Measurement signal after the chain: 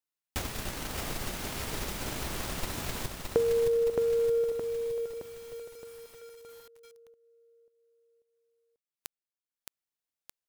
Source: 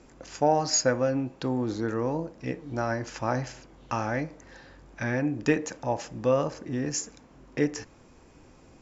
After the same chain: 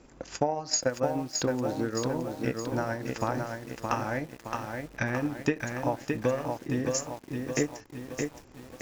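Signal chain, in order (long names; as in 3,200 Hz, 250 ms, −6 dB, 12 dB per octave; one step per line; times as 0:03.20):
transient designer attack +8 dB, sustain −8 dB
downward compressor 2.5 to 1, threshold −25 dBFS
feedback echo at a low word length 618 ms, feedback 55%, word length 8 bits, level −4 dB
level −1.5 dB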